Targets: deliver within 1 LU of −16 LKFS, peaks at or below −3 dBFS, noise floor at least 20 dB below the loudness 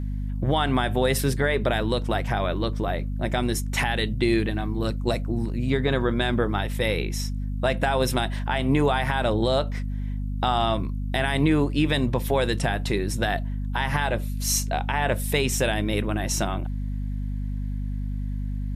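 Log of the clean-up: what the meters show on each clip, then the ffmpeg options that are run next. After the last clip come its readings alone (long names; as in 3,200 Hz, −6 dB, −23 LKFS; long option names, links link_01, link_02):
mains hum 50 Hz; hum harmonics up to 250 Hz; level of the hum −26 dBFS; integrated loudness −25.0 LKFS; sample peak −10.0 dBFS; target loudness −16.0 LKFS
→ -af "bandreject=frequency=50:width_type=h:width=4,bandreject=frequency=100:width_type=h:width=4,bandreject=frequency=150:width_type=h:width=4,bandreject=frequency=200:width_type=h:width=4,bandreject=frequency=250:width_type=h:width=4"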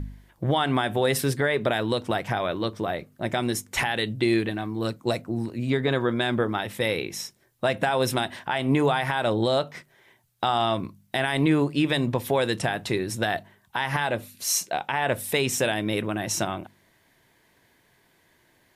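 mains hum none found; integrated loudness −26.0 LKFS; sample peak −10.5 dBFS; target loudness −16.0 LKFS
→ -af "volume=10dB,alimiter=limit=-3dB:level=0:latency=1"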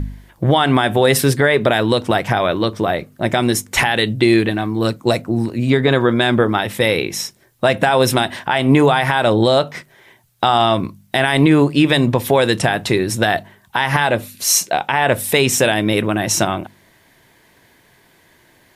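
integrated loudness −16.0 LKFS; sample peak −3.0 dBFS; background noise floor −54 dBFS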